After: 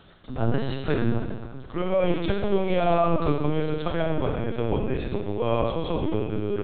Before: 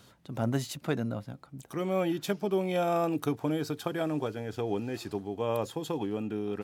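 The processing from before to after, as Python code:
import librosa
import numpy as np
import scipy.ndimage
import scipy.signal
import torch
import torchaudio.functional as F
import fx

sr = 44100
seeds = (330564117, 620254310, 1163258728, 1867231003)

p1 = x + fx.echo_feedback(x, sr, ms=324, feedback_pct=44, wet_db=-21.5, dry=0)
p2 = fx.rev_schroeder(p1, sr, rt60_s=1.3, comb_ms=27, drr_db=1.0)
p3 = fx.lpc_vocoder(p2, sr, seeds[0], excitation='pitch_kept', order=10)
y = p3 * librosa.db_to_amplitude(5.0)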